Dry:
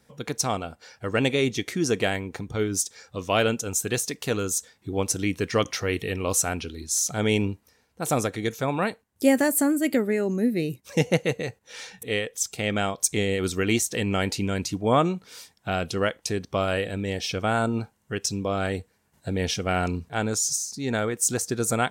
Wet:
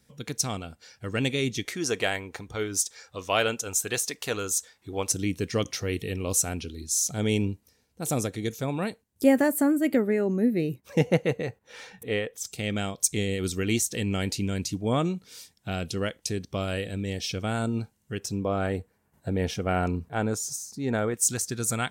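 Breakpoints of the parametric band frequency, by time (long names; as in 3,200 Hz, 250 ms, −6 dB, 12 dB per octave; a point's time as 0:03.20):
parametric band −9 dB 2.5 octaves
800 Hz
from 0:01.65 170 Hz
from 0:05.12 1,200 Hz
from 0:09.24 6,900 Hz
from 0:12.45 1,000 Hz
from 0:18.20 4,900 Hz
from 0:21.14 560 Hz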